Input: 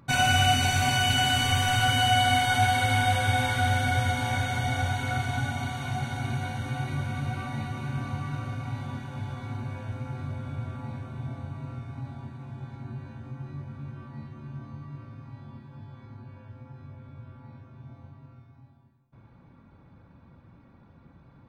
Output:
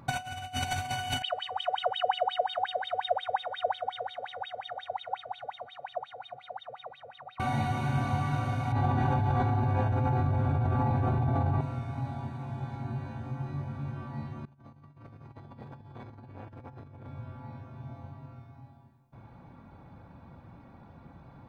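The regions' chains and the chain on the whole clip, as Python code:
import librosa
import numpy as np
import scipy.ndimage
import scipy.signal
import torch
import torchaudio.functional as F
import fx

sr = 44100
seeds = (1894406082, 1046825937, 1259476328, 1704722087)

y = fx.chain(x, sr, fx.notch(hz=6500.0, q=14.0),
    fx.comb(ms=1.6, depth=0.77),
    fx.wah_lfo(hz=5.6, low_hz=450.0, high_hz=3700.0, q=19.0), at=(1.22, 7.4))
y = fx.chain(y, sr, fx.lowpass(hz=1200.0, slope=6),
    fx.comb(ms=2.5, depth=0.37),
    fx.env_flatten(amount_pct=100), at=(8.72, 11.61))
y = fx.chain(y, sr, fx.over_compress(threshold_db=-48.0, ratio=-0.5),
    fx.transformer_sat(knee_hz=410.0), at=(14.45, 17.07))
y = fx.peak_eq(y, sr, hz=760.0, db=7.5, octaves=0.63)
y = fx.over_compress(y, sr, threshold_db=-26.0, ratio=-0.5)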